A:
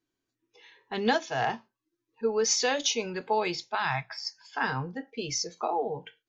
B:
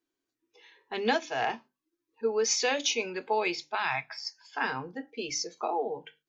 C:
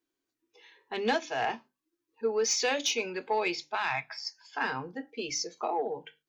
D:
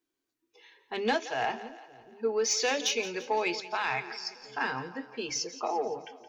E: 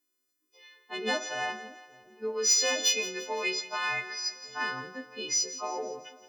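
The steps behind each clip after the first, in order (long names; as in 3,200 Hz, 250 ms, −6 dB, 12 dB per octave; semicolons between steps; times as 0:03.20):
low shelf with overshoot 210 Hz −7 dB, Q 1.5; mains-hum notches 50/100/150/200/250/300 Hz; dynamic equaliser 2,400 Hz, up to +8 dB, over −51 dBFS, Q 4.2; level −2 dB
soft clipping −17 dBFS, distortion −23 dB
echo with a time of its own for lows and highs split 470 Hz, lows 574 ms, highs 171 ms, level −14.5 dB
every partial snapped to a pitch grid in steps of 3 semitones; on a send at −10.5 dB: convolution reverb RT60 0.60 s, pre-delay 3 ms; on the sum: level −4 dB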